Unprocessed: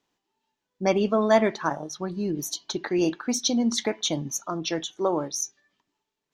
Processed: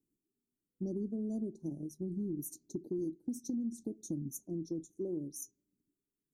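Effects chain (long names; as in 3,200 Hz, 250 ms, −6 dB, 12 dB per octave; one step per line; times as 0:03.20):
elliptic band-stop filter 330–8,900 Hz, stop band 60 dB
downward compressor 6 to 1, threshold −33 dBFS, peak gain reduction 12 dB
level −1.5 dB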